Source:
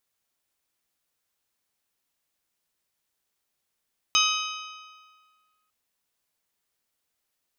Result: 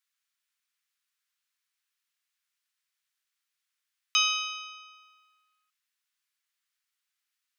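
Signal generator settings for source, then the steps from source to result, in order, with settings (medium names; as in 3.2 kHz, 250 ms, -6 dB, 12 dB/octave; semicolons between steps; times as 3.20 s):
metal hit bell, lowest mode 1.26 kHz, modes 6, decay 1.78 s, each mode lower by 0 dB, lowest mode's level -23.5 dB
high-pass 1.3 kHz 24 dB/octave; treble shelf 7.1 kHz -8 dB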